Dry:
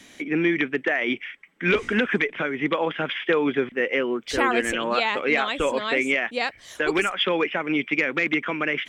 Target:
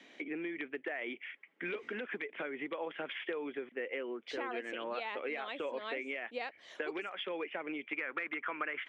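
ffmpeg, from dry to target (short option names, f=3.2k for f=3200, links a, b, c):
-af "asetnsamples=n=441:p=0,asendcmd='7.93 equalizer g 8',equalizer=f=1.3k:w=1:g=-5.5,acompressor=threshold=-31dB:ratio=6,highpass=360,lowpass=2.6k,volume=-3dB"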